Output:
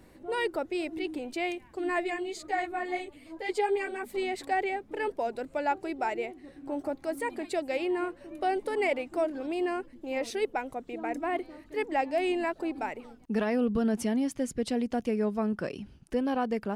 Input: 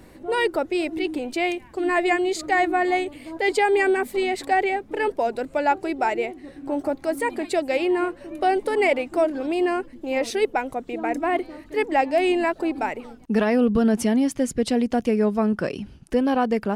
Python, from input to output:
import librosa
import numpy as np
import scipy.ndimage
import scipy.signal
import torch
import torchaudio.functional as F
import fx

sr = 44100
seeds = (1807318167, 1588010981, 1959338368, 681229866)

y = fx.ensemble(x, sr, at=(2.03, 4.08), fade=0.02)
y = y * 10.0 ** (-8.0 / 20.0)